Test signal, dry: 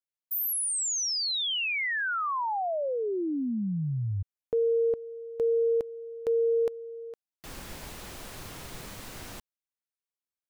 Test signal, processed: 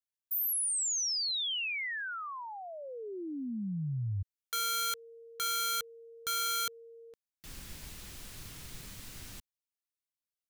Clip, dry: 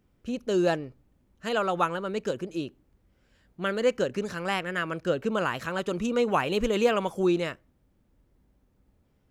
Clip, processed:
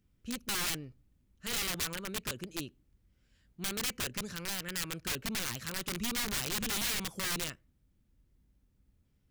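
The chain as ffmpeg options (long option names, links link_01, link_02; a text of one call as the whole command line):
ffmpeg -i in.wav -af "aeval=exprs='(mod(14.1*val(0)+1,2)-1)/14.1':channel_layout=same,equalizer=frequency=670:width_type=o:width=2.6:gain=-12,volume=-2dB" out.wav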